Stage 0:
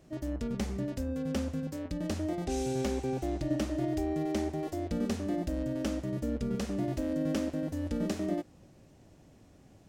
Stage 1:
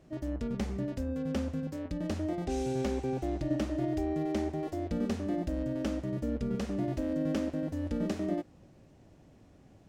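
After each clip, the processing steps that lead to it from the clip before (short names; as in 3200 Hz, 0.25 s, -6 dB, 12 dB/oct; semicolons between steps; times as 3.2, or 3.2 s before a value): high shelf 5000 Hz -8 dB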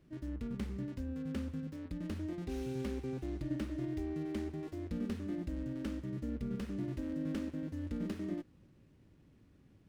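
bell 690 Hz -12.5 dB 0.87 oct; running maximum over 5 samples; gain -4.5 dB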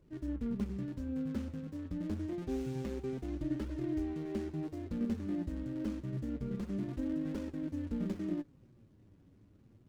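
median filter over 25 samples; flange 0.27 Hz, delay 1.9 ms, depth 9 ms, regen +45%; gain +5.5 dB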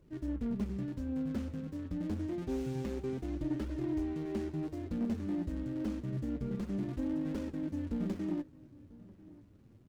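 soft clip -27 dBFS, distortion -23 dB; outdoor echo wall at 170 m, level -20 dB; gain +2 dB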